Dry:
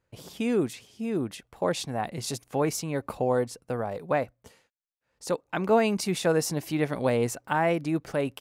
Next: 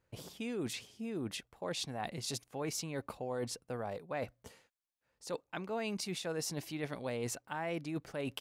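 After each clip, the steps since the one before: dynamic EQ 3900 Hz, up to +6 dB, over -47 dBFS, Q 0.7; reverse; compressor 4:1, threshold -36 dBFS, peak gain reduction 16 dB; reverse; gain -1.5 dB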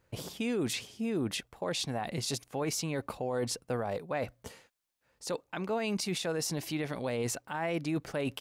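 limiter -31.5 dBFS, peak gain reduction 7.5 dB; gain +7.5 dB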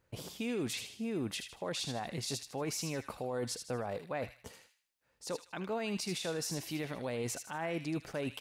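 thin delay 78 ms, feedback 36%, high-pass 1900 Hz, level -6 dB; gain -4 dB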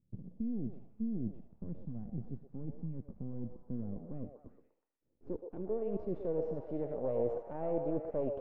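half-wave rectifier; delay with a stepping band-pass 0.123 s, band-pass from 600 Hz, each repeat 0.7 oct, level -3 dB; low-pass sweep 200 Hz -> 550 Hz, 3.45–6.9; gain +2 dB

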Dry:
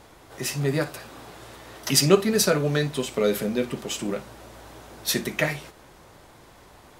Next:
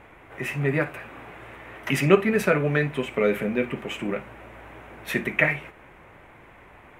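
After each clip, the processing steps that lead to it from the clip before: resonant high shelf 3300 Hz -12.5 dB, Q 3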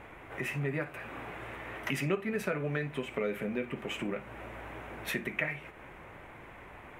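compressor 2.5:1, threshold -35 dBFS, peak gain reduction 16 dB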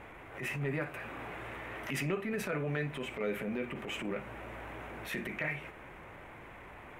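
transient shaper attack -10 dB, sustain +2 dB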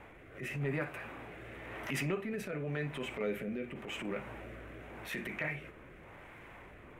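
rotary speaker horn 0.9 Hz

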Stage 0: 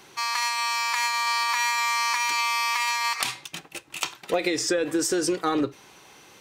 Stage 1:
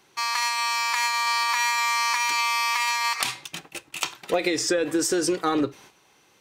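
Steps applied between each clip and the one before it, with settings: gate -48 dBFS, range -10 dB; gain +1 dB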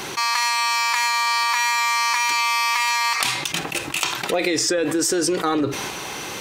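fast leveller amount 70%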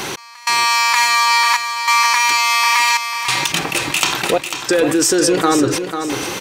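step gate "x..xxxxxx" 96 bpm -24 dB; on a send: feedback echo 0.495 s, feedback 33%, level -8 dB; on the sum: gain +6 dB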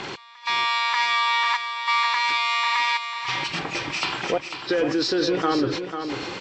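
nonlinear frequency compression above 2200 Hz 1.5:1; LPF 5600 Hz 12 dB/oct; pre-echo 40 ms -20.5 dB; gain -7.5 dB

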